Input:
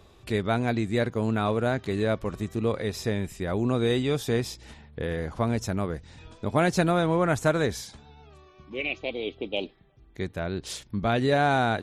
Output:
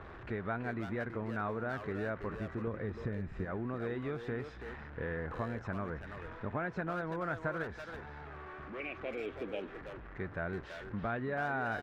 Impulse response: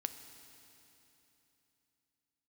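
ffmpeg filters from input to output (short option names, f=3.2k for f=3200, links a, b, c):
-filter_complex "[0:a]aeval=exprs='val(0)+0.5*0.0158*sgn(val(0))':c=same,asettb=1/sr,asplit=3[a][b][c];[a]atrim=end=2.674[d];[b]atrim=start=2.67:end=3.45,asetpts=PTS-STARTPTS,afade=t=in:d=0.004:c=qsin,afade=t=out:st=0.776:d=0.004:c=qsin,lowshelf=f=380:g=10.5[e];[c]atrim=start=3.446[f];[d][e]acrossfade=d=0.004:c1=hsin:c2=qsin[g];[g][f]acrossfade=d=0.004:c1=qsin:c2=hsin,acompressor=threshold=-25dB:ratio=10,asettb=1/sr,asplit=3[h][i][j];[h]atrim=end=7.634[k];[i]atrim=start=7.63:end=8.8,asetpts=PTS-STARTPTS,afade=t=in:d=0.004:c=qsin,afade=t=out:st=1.166:d=0.004:c=qsin,asoftclip=type=hard:threshold=-31dB[l];[j]atrim=start=8.796[m];[k][l]acrossfade=d=0.004:c1=hsin:c2=qsin[n];[n][m]acrossfade=d=0.004:c1=qsin:c2=hsin,lowpass=f=1.6k:t=q:w=2.5,asplit=2[o][p];[p]adelay=330,highpass=300,lowpass=3.4k,asoftclip=type=hard:threshold=-26.5dB,volume=-6dB[q];[o][q]amix=inputs=2:normalize=0,volume=-9dB"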